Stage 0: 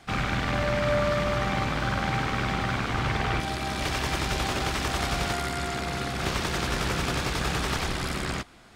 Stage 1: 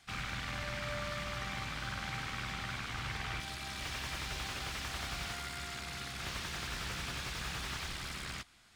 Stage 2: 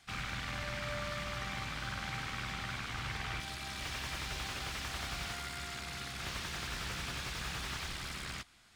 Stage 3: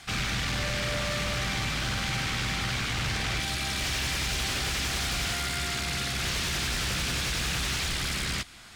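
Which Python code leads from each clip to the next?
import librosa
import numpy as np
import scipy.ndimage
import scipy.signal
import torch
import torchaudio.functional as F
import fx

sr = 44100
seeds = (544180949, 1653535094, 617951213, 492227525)

y1 = fx.tone_stack(x, sr, knobs='5-5-5')
y1 = fx.slew_limit(y1, sr, full_power_hz=34.0)
y1 = y1 * librosa.db_to_amplitude(1.0)
y2 = y1
y3 = fx.fold_sine(y2, sr, drive_db=11, ceiling_db=-25.0)
y3 = fx.dynamic_eq(y3, sr, hz=1000.0, q=1.1, threshold_db=-45.0, ratio=4.0, max_db=-5)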